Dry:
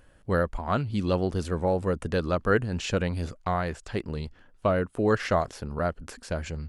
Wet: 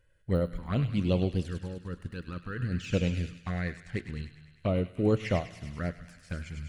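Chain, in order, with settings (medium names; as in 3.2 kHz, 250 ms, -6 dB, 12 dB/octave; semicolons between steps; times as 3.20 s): de-esser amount 80%; ten-band graphic EQ 125 Hz +6 dB, 1 kHz -7 dB, 2 kHz +7 dB; 1.51–2.60 s: level held to a coarse grid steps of 14 dB; touch-sensitive flanger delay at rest 2.1 ms, full sweep at -20 dBFS; feedback echo behind a high-pass 101 ms, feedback 72%, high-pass 1.7 kHz, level -6 dB; on a send at -13 dB: reverberation RT60 1.0 s, pre-delay 4 ms; on the sum: upward expansion 1.5:1, over -40 dBFS; trim -1 dB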